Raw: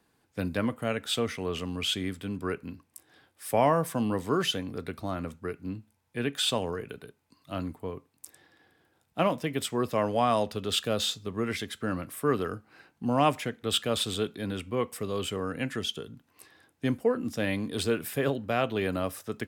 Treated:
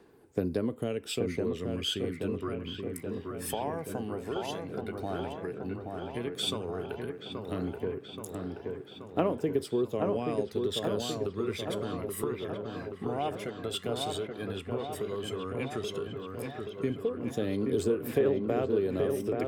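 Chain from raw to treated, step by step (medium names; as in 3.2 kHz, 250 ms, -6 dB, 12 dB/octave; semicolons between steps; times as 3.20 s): peaking EQ 400 Hz +13 dB 0.65 oct; compression 4:1, threshold -33 dBFS, peak gain reduction 18 dB; phaser 0.11 Hz, delay 1.5 ms, feedback 55%; on a send: feedback echo behind a low-pass 828 ms, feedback 67%, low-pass 2.2 kHz, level -4 dB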